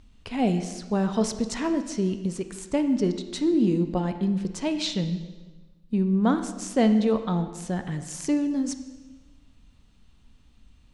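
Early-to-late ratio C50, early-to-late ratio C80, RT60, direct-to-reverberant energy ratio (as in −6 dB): 10.0 dB, 11.5 dB, 1.2 s, 8.5 dB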